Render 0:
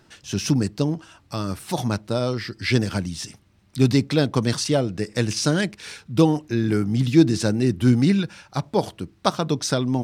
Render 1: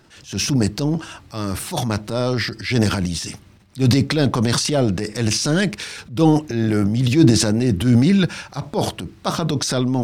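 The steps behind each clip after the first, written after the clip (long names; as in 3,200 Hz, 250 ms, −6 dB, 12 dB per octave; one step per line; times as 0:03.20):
transient designer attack −7 dB, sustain +9 dB
level +3 dB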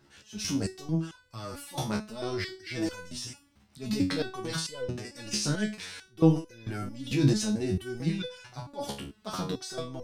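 step-sequenced resonator 4.5 Hz 70–500 Hz
level −1 dB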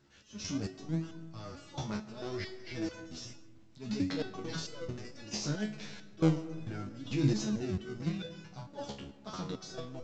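in parallel at −9.5 dB: sample-and-hold swept by an LFO 36×, swing 100% 0.66 Hz
on the sum: comb and all-pass reverb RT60 1.8 s, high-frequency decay 0.3×, pre-delay 90 ms, DRR 15.5 dB
level −7.5 dB
mu-law 128 kbit/s 16,000 Hz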